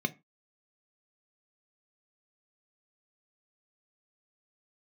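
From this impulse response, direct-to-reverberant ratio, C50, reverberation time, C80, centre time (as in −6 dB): 7.5 dB, 21.5 dB, 0.25 s, 28.0 dB, 6 ms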